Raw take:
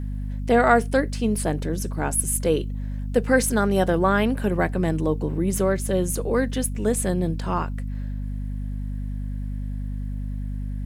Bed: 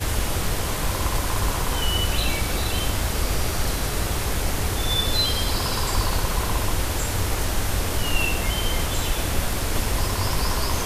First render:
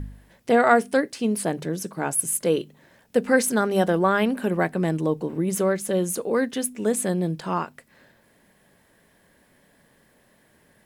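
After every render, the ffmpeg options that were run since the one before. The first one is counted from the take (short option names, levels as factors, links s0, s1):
-af "bandreject=f=50:t=h:w=4,bandreject=f=100:t=h:w=4,bandreject=f=150:t=h:w=4,bandreject=f=200:t=h:w=4,bandreject=f=250:t=h:w=4"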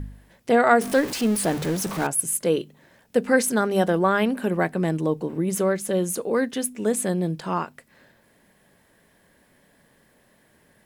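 -filter_complex "[0:a]asettb=1/sr,asplit=3[s0][s1][s2];[s0]atrim=end=0.814[s3];[s1]atrim=start=0.81:end=2.07,asetpts=PTS-STARTPTS,afade=t=in:d=0.004:c=qsin,afade=t=out:st=1.256:d=0.004:c=qsin,aeval=exprs='val(0)+0.5*0.0447*sgn(val(0))':c=same[s4];[s2]atrim=start=2.066[s5];[s3][s4]acrossfade=d=0.004:c1=hsin:c2=qsin[s6];[s6][s5]acrossfade=d=0.004:c1=qsin:c2=hsin"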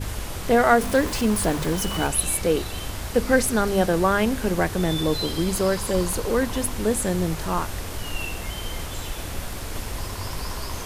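-filter_complex "[1:a]volume=0.422[s0];[0:a][s0]amix=inputs=2:normalize=0"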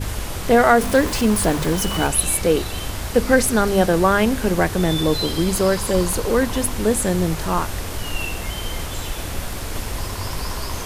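-af "volume=1.58,alimiter=limit=0.794:level=0:latency=1"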